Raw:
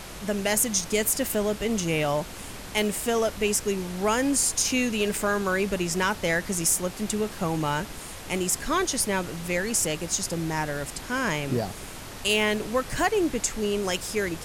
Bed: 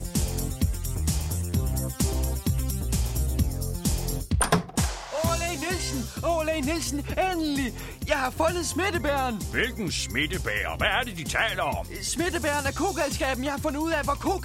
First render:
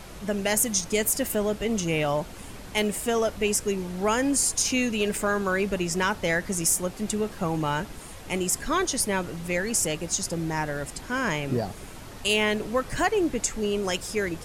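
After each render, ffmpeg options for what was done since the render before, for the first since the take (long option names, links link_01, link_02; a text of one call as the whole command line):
ffmpeg -i in.wav -af "afftdn=noise_reduction=6:noise_floor=-40" out.wav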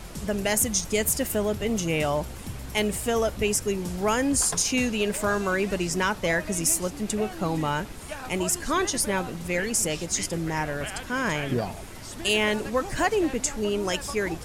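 ffmpeg -i in.wav -i bed.wav -filter_complex "[1:a]volume=-12.5dB[link_01];[0:a][link_01]amix=inputs=2:normalize=0" out.wav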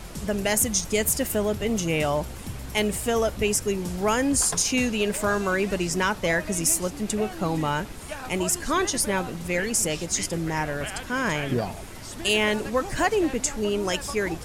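ffmpeg -i in.wav -af "volume=1dB" out.wav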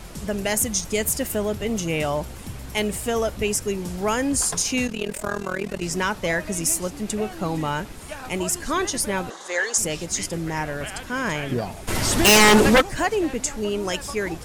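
ffmpeg -i in.wav -filter_complex "[0:a]asettb=1/sr,asplit=3[link_01][link_02][link_03];[link_01]atrim=end=4.874[link_04];[link_02]atrim=start=4.87:end=5.83,asetpts=PTS-STARTPTS,afade=type=in:duration=0.004:curve=qsin,afade=type=out:start_time=0.956:duration=0.004:curve=qsin,tremolo=f=40:d=0.919[link_05];[link_03]atrim=start=5.826[link_06];[link_04][link_05]acrossfade=duration=0.004:curve1=hsin:curve2=qsin[link_07];[link_07][link_06]acrossfade=duration=0.004:curve1=qsin:curve2=hsin,asettb=1/sr,asplit=3[link_08][link_09][link_10];[link_08]atrim=end=9.304[link_11];[link_09]atrim=start=9.3:end=9.78,asetpts=PTS-STARTPTS,afade=type=in:duration=0.004:curve=qsin,afade=type=out:start_time=0.476:duration=0.004:curve=qsin,highpass=frequency=400:width=0.5412,highpass=frequency=400:width=1.3066,equalizer=frequency=800:width_type=q:width=4:gain=5,equalizer=frequency=1100:width_type=q:width=4:gain=9,equalizer=frequency=1700:width_type=q:width=4:gain=8,equalizer=frequency=2500:width_type=q:width=4:gain=-10,equalizer=frequency=3700:width_type=q:width=4:gain=9,equalizer=frequency=6600:width_type=q:width=4:gain=9,lowpass=frequency=9200:width=0.5412,lowpass=frequency=9200:width=1.3066[link_12];[link_10]atrim=start=9.776[link_13];[link_11][link_12]acrossfade=duration=0.004:curve1=hsin:curve2=qsin[link_14];[link_14][link_13]acrossfade=duration=0.004:curve1=qsin:curve2=hsin,asplit=3[link_15][link_16][link_17];[link_15]afade=type=out:start_time=11.87:duration=0.02[link_18];[link_16]aeval=exprs='0.335*sin(PI/2*4.47*val(0)/0.335)':channel_layout=same,afade=type=in:start_time=11.87:duration=0.02,afade=type=out:start_time=12.8:duration=0.02[link_19];[link_17]afade=type=in:start_time=12.8:duration=0.02[link_20];[link_18][link_19][link_20]amix=inputs=3:normalize=0" out.wav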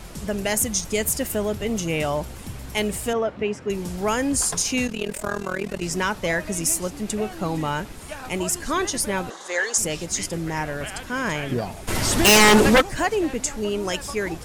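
ffmpeg -i in.wav -filter_complex "[0:a]asettb=1/sr,asplit=3[link_01][link_02][link_03];[link_01]atrim=end=3.134[link_04];[link_02]atrim=start=3.13:end=3.7,asetpts=PTS-STARTPTS,afade=type=in:duration=0.004:curve=qsin,afade=type=out:start_time=0.566:duration=0.004:curve=qsin,highpass=140,lowpass=2300[link_05];[link_03]atrim=start=3.696[link_06];[link_04][link_05]acrossfade=duration=0.004:curve1=hsin:curve2=qsin[link_07];[link_07][link_06]acrossfade=duration=0.004:curve1=qsin:curve2=hsin" out.wav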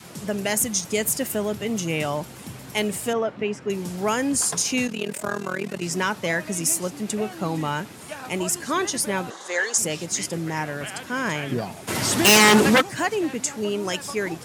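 ffmpeg -i in.wav -af "highpass=frequency=110:width=0.5412,highpass=frequency=110:width=1.3066,adynamicequalizer=threshold=0.02:dfrequency=550:dqfactor=1.4:tfrequency=550:tqfactor=1.4:attack=5:release=100:ratio=0.375:range=2:mode=cutabove:tftype=bell" out.wav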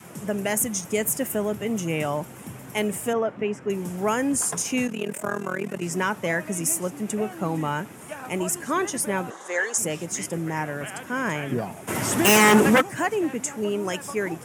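ffmpeg -i in.wav -af "highpass=86,equalizer=frequency=4300:width=1.7:gain=-13.5" out.wav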